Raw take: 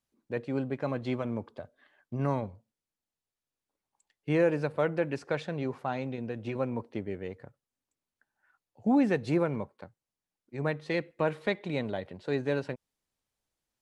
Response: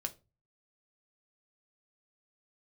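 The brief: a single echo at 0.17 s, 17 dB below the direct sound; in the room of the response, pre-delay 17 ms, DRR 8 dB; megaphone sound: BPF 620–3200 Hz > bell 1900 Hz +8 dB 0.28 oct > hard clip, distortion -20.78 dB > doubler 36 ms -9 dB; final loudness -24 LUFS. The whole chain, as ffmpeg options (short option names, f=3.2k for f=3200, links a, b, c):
-filter_complex "[0:a]aecho=1:1:170:0.141,asplit=2[a][b];[1:a]atrim=start_sample=2205,adelay=17[c];[b][c]afir=irnorm=-1:irlink=0,volume=-7.5dB[d];[a][d]amix=inputs=2:normalize=0,highpass=620,lowpass=3.2k,equalizer=f=1.9k:t=o:w=0.28:g=8,asoftclip=type=hard:threshold=-23dB,asplit=2[e][f];[f]adelay=36,volume=-9dB[g];[e][g]amix=inputs=2:normalize=0,volume=12dB"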